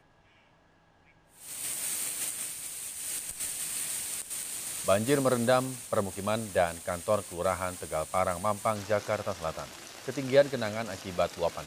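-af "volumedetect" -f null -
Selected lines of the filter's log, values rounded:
mean_volume: -31.5 dB
max_volume: -9.1 dB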